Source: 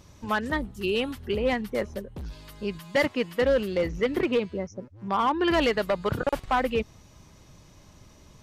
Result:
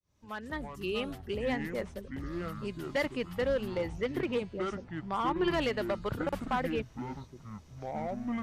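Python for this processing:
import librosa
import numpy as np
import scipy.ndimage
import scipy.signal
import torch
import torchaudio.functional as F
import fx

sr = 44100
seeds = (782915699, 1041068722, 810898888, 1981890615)

y = fx.fade_in_head(x, sr, length_s=0.73)
y = fx.echo_pitch(y, sr, ms=172, semitones=-7, count=3, db_per_echo=-6.0)
y = y * 10.0 ** (-7.5 / 20.0)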